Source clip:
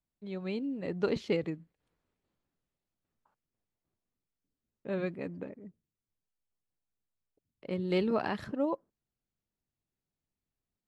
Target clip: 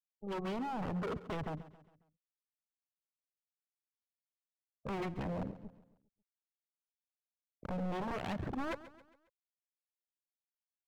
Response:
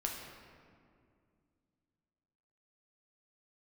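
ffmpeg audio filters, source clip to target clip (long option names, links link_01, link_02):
-filter_complex "[0:a]aphaser=in_gain=1:out_gain=1:delay=2.7:decay=0.47:speed=1.3:type=triangular,aeval=exprs='sgn(val(0))*max(abs(val(0))-0.00335,0)':channel_layout=same,asubboost=boost=3.5:cutoff=200,acompressor=threshold=-33dB:ratio=6,alimiter=level_in=7dB:limit=-24dB:level=0:latency=1:release=126,volume=-7dB,adynamicsmooth=sensitivity=6:basefreq=1500,afftfilt=real='re*gte(hypot(re,im),0.00224)':imag='im*gte(hypot(re,im),0.00224)':win_size=1024:overlap=0.75,aeval=exprs='0.0106*(abs(mod(val(0)/0.0106+3,4)-2)-1)':channel_layout=same,asplit=2[link_01][link_02];[link_02]aecho=0:1:136|272|408|544:0.158|0.0713|0.0321|0.0144[link_03];[link_01][link_03]amix=inputs=2:normalize=0,volume=7dB"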